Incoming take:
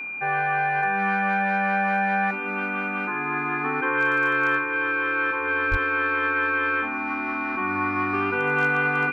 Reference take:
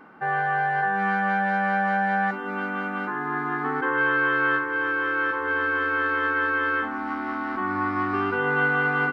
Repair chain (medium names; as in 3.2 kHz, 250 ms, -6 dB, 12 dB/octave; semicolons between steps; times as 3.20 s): clip repair -13.5 dBFS; band-stop 2.4 kHz, Q 30; 5.70–5.82 s: high-pass 140 Hz 24 dB/octave